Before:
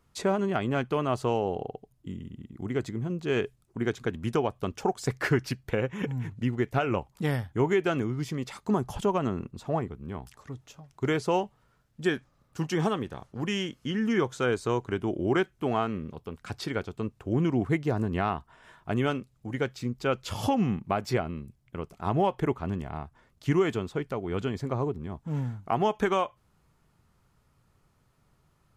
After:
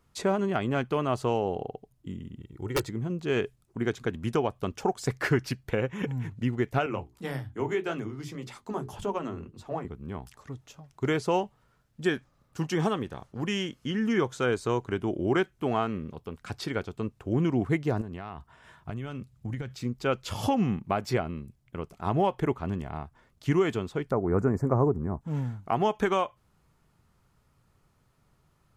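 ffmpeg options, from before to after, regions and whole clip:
ffmpeg -i in.wav -filter_complex "[0:a]asettb=1/sr,asplit=3[link_01][link_02][link_03];[link_01]atrim=end=2.404[link_04];[link_02]atrim=start=2.4:end=2.9,asetpts=PTS-STARTPTS,afade=type=in:duration=0.004:curve=qsin,afade=type=out:start_time=0.496:duration=0.004:curve=qsin,aeval=exprs='(mod(10*val(0)+1,2)-1)/10':channel_layout=same,aecho=1:1:2.2:0.65,atrim=end_sample=22050[link_05];[link_03]atrim=start=2.896[link_06];[link_04][link_05]acrossfade=duration=0.004:curve1=hsin:curve2=qsin[link_07];[link_07][link_06]acrossfade=duration=0.004:curve1=qsin:curve2=hsin,asettb=1/sr,asplit=3[link_08][link_09][link_10];[link_08]atrim=end=6.864[link_11];[link_09]atrim=start=6.86:end=9.85,asetpts=PTS-STARTPTS,afade=type=in:duration=0.004:curve=qsin,afade=type=out:start_time=2.986:duration=0.004:curve=qsin,flanger=delay=6.3:depth=7.9:regen=-47:speed=1.8:shape=triangular,bandreject=frequency=60:width_type=h:width=6,bandreject=frequency=120:width_type=h:width=6,bandreject=frequency=180:width_type=h:width=6,bandreject=frequency=240:width_type=h:width=6,bandreject=frequency=300:width_type=h:width=6,bandreject=frequency=360:width_type=h:width=6,bandreject=frequency=420:width_type=h:width=6,acrossover=split=170[link_12][link_13];[link_12]adelay=30[link_14];[link_14][link_13]amix=inputs=2:normalize=0,atrim=end_sample=131859[link_15];[link_10]atrim=start=9.846[link_16];[link_11][link_15]acrossfade=duration=0.004:curve1=hsin:curve2=qsin[link_17];[link_17][link_16]acrossfade=duration=0.004:curve1=qsin:curve2=hsin,asettb=1/sr,asplit=3[link_18][link_19][link_20];[link_18]atrim=end=18.014[link_21];[link_19]atrim=start=18.01:end=19.75,asetpts=PTS-STARTPTS,afade=type=in:duration=0.004:curve=qsin,afade=type=out:start_time=1.736:duration=0.004:curve=qsin,highpass=59,acompressor=threshold=-33dB:ratio=10:attack=3.2:release=140:knee=1:detection=peak,asubboost=boost=6.5:cutoff=190[link_22];[link_20]atrim=start=19.746[link_23];[link_21][link_22]acrossfade=duration=0.004:curve1=hsin:curve2=qsin[link_24];[link_24][link_23]acrossfade=duration=0.004:curve1=qsin:curve2=hsin,asettb=1/sr,asplit=3[link_25][link_26][link_27];[link_25]atrim=end=24.114[link_28];[link_26]atrim=start=24.11:end=25.21,asetpts=PTS-STARTPTS,afade=type=in:duration=0.004:curve=qsin,afade=type=out:start_time=1.096:duration=0.004:curve=qsin,asuperstop=centerf=3300:order=4:qfactor=0.62,acontrast=46,highshelf=frequency=3400:gain=-6.5[link_29];[link_27]atrim=start=25.206[link_30];[link_28][link_29]acrossfade=duration=0.004:curve1=hsin:curve2=qsin[link_31];[link_31][link_30]acrossfade=duration=0.004:curve1=qsin:curve2=hsin" out.wav

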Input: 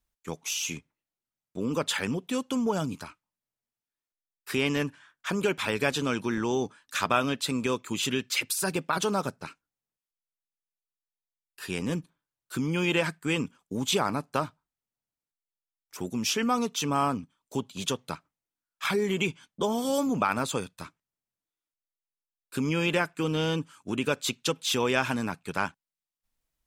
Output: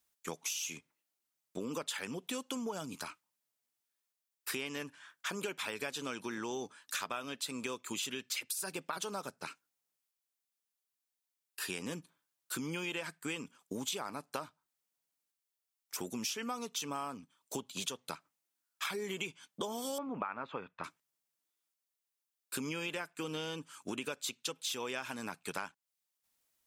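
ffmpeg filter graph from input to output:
ffmpeg -i in.wav -filter_complex "[0:a]asettb=1/sr,asplit=3[link_01][link_02][link_03];[link_01]atrim=end=19.984[link_04];[link_02]atrim=start=19.98:end=20.84,asetpts=PTS-STARTPTS,afade=type=in:duration=0.004:curve=qsin,afade=type=out:start_time=0.856:duration=0.004:curve=qsin,lowpass=frequency=2500:width=0.5412,lowpass=frequency=2500:width=1.3066,equalizer=frequency=1100:width=1.3:gain=4.5[link_05];[link_03]atrim=start=20.836[link_06];[link_04][link_05]acrossfade=duration=0.004:curve1=hsin:curve2=qsin[link_07];[link_07][link_06]acrossfade=duration=0.004:curve1=qsin:curve2=hsin,highpass=frequency=350:poles=1,highshelf=frequency=4600:gain=6,acompressor=threshold=-39dB:ratio=6,volume=2.5dB" out.wav

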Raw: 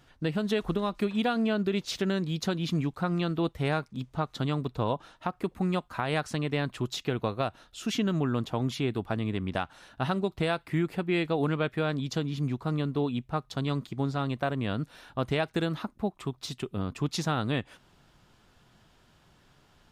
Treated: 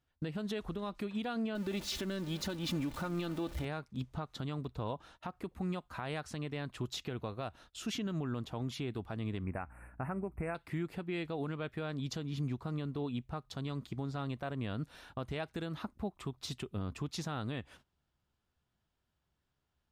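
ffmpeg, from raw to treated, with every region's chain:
ffmpeg -i in.wav -filter_complex "[0:a]asettb=1/sr,asplit=3[link_01][link_02][link_03];[link_01]atrim=end=1.554[link_04];[link_02]atrim=start=1.55:end=3.65,asetpts=PTS-STARTPTS,afade=type=in:duration=0.004:curve=qsin,afade=type=out:start_time=2.096:duration=0.004:curve=qsin,aeval=exprs='val(0)+0.5*0.0178*sgn(val(0))':channel_layout=same,aecho=1:1:3.4:0.45,atrim=end_sample=92610,aecho=1:1:251:0.0708,atrim=end_sample=92610[link_05];[link_03]atrim=start=3.646[link_06];[link_04][link_05]acrossfade=duration=0.004:curve1=hsin:curve2=qsin[link_07];[link_07][link_06]acrossfade=duration=0.004:curve1=qsin:curve2=hsin,asettb=1/sr,asplit=3[link_08][link_09][link_10];[link_08]atrim=end=9.444[link_11];[link_09]atrim=start=9.44:end=10.55,asetpts=PTS-STARTPTS,afade=type=in:duration=0.004:curve=qsin,afade=type=out:start_time=1.106:duration=0.004:curve=qsin,aeval=exprs='val(0)+0.00178*(sin(2*PI*60*n/s)+sin(2*PI*2*60*n/s)/2+sin(2*PI*3*60*n/s)/3+sin(2*PI*4*60*n/s)/4+sin(2*PI*5*60*n/s)/5)':channel_layout=same,asuperstop=centerf=4600:order=20:qfactor=0.85[link_12];[link_10]atrim=start=10.546[link_13];[link_11][link_12]acrossfade=duration=0.004:curve1=hsin:curve2=qsin[link_14];[link_14][link_13]acrossfade=duration=0.004:curve1=qsin:curve2=hsin,agate=range=-20dB:threshold=-52dB:ratio=16:detection=peak,equalizer=frequency=69:width_type=o:width=0.61:gain=11,alimiter=level_in=0.5dB:limit=-24dB:level=0:latency=1:release=232,volume=-0.5dB,volume=-3.5dB" out.wav

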